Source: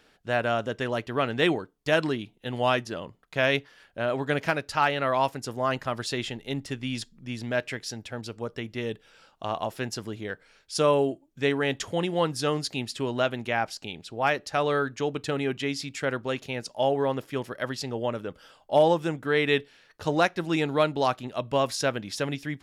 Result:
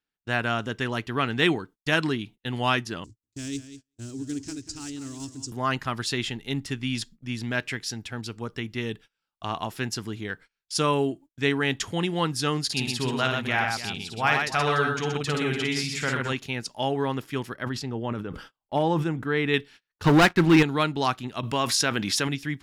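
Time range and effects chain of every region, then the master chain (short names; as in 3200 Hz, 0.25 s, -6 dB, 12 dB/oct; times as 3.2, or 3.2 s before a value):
3.04–5.52 block floating point 5-bit + EQ curve 110 Hz 0 dB, 170 Hz -20 dB, 290 Hz +1 dB, 550 Hz -23 dB, 970 Hz -28 dB, 2300 Hz -24 dB, 3400 Hz -16 dB, 5300 Hz -1 dB, 7700 Hz +4 dB, 13000 Hz -26 dB + feedback echo 0.192 s, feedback 25%, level -12 dB
12.64–16.33 bell 310 Hz -7 dB 0.32 oct + tapped delay 54/125/292 ms -4.5/-4.5/-13 dB
17.54–19.54 high shelf 2200 Hz -10.5 dB + sustainer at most 98 dB/s
20.04–20.63 tone controls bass 0 dB, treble -15 dB + sample leveller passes 3 + de-esser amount 25%
21.43–22.28 low shelf 150 Hz -9 dB + short-mantissa float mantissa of 8-bit + fast leveller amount 50%
whole clip: bell 570 Hz -11.5 dB 0.73 oct; gate -48 dBFS, range -31 dB; gain +3.5 dB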